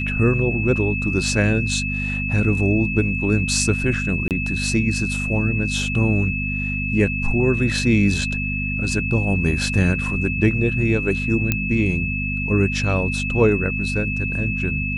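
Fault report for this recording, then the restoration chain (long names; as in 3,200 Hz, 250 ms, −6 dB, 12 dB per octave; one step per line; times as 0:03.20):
mains hum 50 Hz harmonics 5 −26 dBFS
whistle 2,600 Hz −25 dBFS
0:04.28–0:04.31: drop-out 28 ms
0:11.52: click −5 dBFS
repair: click removal
hum removal 50 Hz, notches 5
notch filter 2,600 Hz, Q 30
repair the gap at 0:04.28, 28 ms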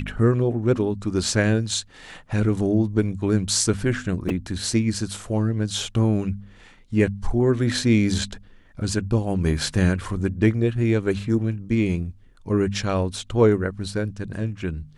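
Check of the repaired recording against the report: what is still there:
none of them is left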